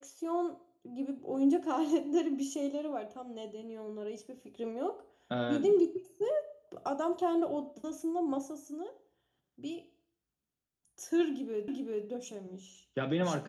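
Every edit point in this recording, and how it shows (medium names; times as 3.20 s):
11.68 s: repeat of the last 0.39 s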